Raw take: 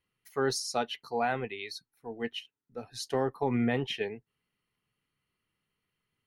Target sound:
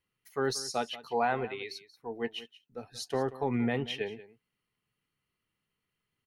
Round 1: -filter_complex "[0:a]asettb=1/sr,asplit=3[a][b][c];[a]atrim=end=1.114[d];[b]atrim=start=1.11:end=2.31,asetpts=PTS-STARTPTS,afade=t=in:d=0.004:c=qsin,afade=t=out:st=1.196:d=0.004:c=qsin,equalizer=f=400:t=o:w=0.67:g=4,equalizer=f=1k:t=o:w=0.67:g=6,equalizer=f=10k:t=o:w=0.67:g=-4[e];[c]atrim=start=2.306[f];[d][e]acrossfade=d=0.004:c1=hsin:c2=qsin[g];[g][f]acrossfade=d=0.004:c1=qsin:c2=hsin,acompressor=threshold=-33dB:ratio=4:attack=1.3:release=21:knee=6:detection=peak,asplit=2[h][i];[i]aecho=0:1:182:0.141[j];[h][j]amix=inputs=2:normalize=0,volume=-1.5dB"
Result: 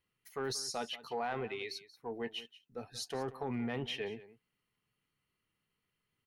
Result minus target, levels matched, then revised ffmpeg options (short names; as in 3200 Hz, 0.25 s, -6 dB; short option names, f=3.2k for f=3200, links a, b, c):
compressor: peak gain reduction +9.5 dB
-filter_complex "[0:a]asettb=1/sr,asplit=3[a][b][c];[a]atrim=end=1.114[d];[b]atrim=start=1.11:end=2.31,asetpts=PTS-STARTPTS,afade=t=in:d=0.004:c=qsin,afade=t=out:st=1.196:d=0.004:c=qsin,equalizer=f=400:t=o:w=0.67:g=4,equalizer=f=1k:t=o:w=0.67:g=6,equalizer=f=10k:t=o:w=0.67:g=-4[e];[c]atrim=start=2.306[f];[d][e]acrossfade=d=0.004:c1=hsin:c2=qsin[g];[g][f]acrossfade=d=0.004:c1=qsin:c2=hsin,asplit=2[h][i];[i]aecho=0:1:182:0.141[j];[h][j]amix=inputs=2:normalize=0,volume=-1.5dB"